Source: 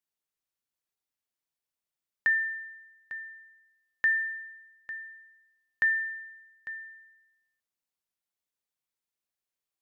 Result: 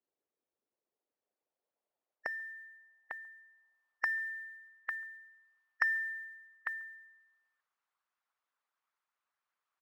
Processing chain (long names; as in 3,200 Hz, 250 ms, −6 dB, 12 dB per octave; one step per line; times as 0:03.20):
far-end echo of a speakerphone 140 ms, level −28 dB
in parallel at −2 dB: downward compressor 8 to 1, threshold −35 dBFS, peak gain reduction 13 dB
on the sum: sine wavefolder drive 4 dB, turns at −13 dBFS
band-pass filter sweep 420 Hz → 1,200 Hz, 0:00.75–0:04.67
floating-point word with a short mantissa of 6 bits
harmonic and percussive parts rebalanced harmonic −13 dB
level +5.5 dB